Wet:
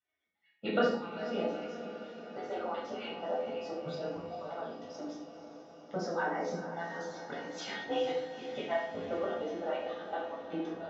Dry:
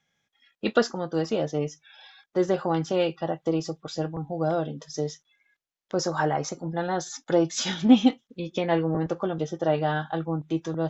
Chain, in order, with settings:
harmonic-percussive split with one part muted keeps percussive
band-pass filter 110–5,000 Hz
high-frequency loss of the air 100 metres
notch filter 1,100 Hz, Q 28
tuned comb filter 170 Hz, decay 0.63 s, harmonics odd, mix 80%
on a send: feedback delay with all-pass diffusion 455 ms, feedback 68%, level −11 dB
on the sum: rectangular room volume 920 cubic metres, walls furnished, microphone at 7 metres

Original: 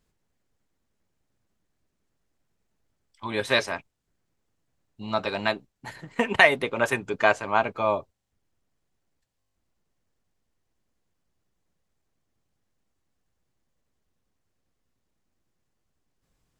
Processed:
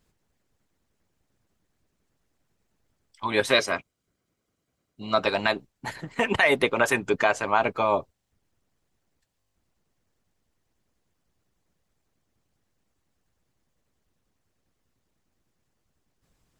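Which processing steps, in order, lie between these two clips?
0:03.51–0:05.22: notch comb filter 880 Hz
brickwall limiter −13.5 dBFS, peak gain reduction 11.5 dB
harmonic and percussive parts rebalanced harmonic −7 dB
level +6.5 dB

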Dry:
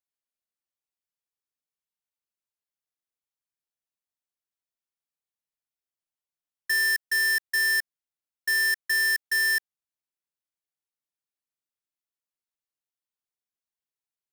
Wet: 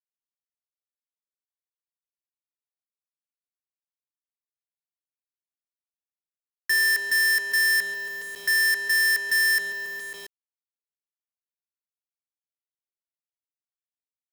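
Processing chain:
delay with a band-pass on its return 137 ms, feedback 59%, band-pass 450 Hz, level −12.5 dB
bit reduction 11 bits
power curve on the samples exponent 0.35
level +2 dB

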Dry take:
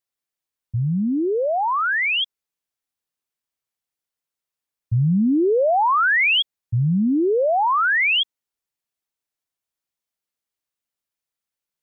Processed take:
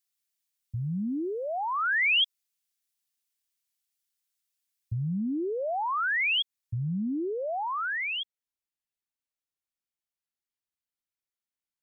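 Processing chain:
octave-band graphic EQ 125/500/1,000 Hz −4/−7/−4 dB
downward compressor, threshold −23 dBFS, peak gain reduction 6.5 dB
high-shelf EQ 2,200 Hz +11 dB, from 0:05.20 +5.5 dB, from 0:06.88 −4 dB
level −5 dB

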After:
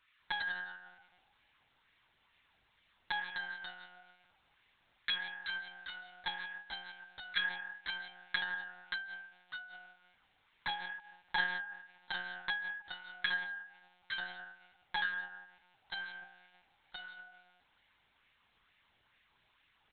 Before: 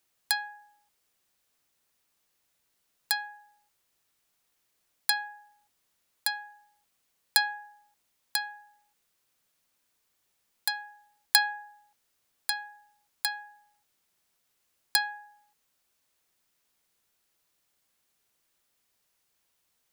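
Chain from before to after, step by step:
low-shelf EQ 450 Hz −10.5 dB
comb filter 4.2 ms, depth 43%
downward compressor 8 to 1, threshold −37 dBFS, peak gain reduction 21 dB
auto-filter high-pass sine 2.2 Hz 460–2,000 Hz
convolution reverb, pre-delay 105 ms, DRR 12 dB
delay with pitch and tempo change per echo 81 ms, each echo −1 semitone, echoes 2, each echo −6 dB
bucket-brigade delay 311 ms, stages 2,048, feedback 32%, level −15 dB
one-pitch LPC vocoder at 8 kHz 180 Hz
level +6.5 dB

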